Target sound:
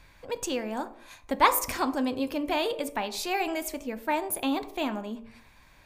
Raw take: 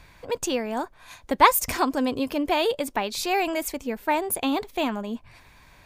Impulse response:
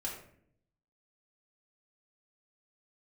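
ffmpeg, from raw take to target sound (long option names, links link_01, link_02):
-filter_complex "[0:a]bandreject=frequency=56.98:width_type=h:width=4,bandreject=frequency=113.96:width_type=h:width=4,bandreject=frequency=170.94:width_type=h:width=4,bandreject=frequency=227.92:width_type=h:width=4,bandreject=frequency=284.9:width_type=h:width=4,bandreject=frequency=341.88:width_type=h:width=4,bandreject=frequency=398.86:width_type=h:width=4,bandreject=frequency=455.84:width_type=h:width=4,bandreject=frequency=512.82:width_type=h:width=4,bandreject=frequency=569.8:width_type=h:width=4,bandreject=frequency=626.78:width_type=h:width=4,bandreject=frequency=683.76:width_type=h:width=4,bandreject=frequency=740.74:width_type=h:width=4,bandreject=frequency=797.72:width_type=h:width=4,bandreject=frequency=854.7:width_type=h:width=4,bandreject=frequency=911.68:width_type=h:width=4,bandreject=frequency=968.66:width_type=h:width=4,bandreject=frequency=1025.64:width_type=h:width=4,bandreject=frequency=1082.62:width_type=h:width=4,bandreject=frequency=1139.6:width_type=h:width=4,bandreject=frequency=1196.58:width_type=h:width=4,bandreject=frequency=1253.56:width_type=h:width=4,asplit=2[link_01][link_02];[1:a]atrim=start_sample=2205,afade=type=out:start_time=0.33:duration=0.01,atrim=end_sample=14994[link_03];[link_02][link_03]afir=irnorm=-1:irlink=0,volume=-11dB[link_04];[link_01][link_04]amix=inputs=2:normalize=0,volume=-5.5dB"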